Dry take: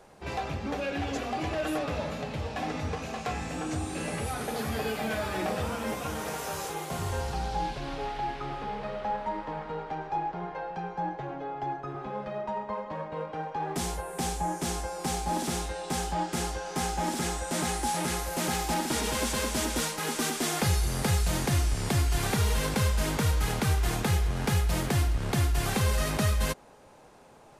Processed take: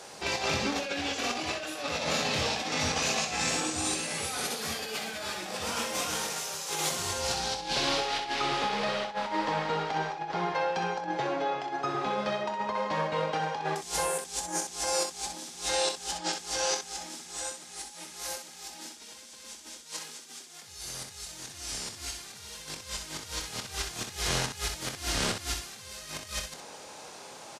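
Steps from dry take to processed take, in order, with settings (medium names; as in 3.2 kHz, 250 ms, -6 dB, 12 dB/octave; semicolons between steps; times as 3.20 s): high-pass 260 Hz 6 dB/octave; peaking EQ 5.5 kHz +13.5 dB 2.2 oct; compressor with a negative ratio -34 dBFS, ratio -0.5; early reflections 25 ms -9.5 dB, 63 ms -7 dB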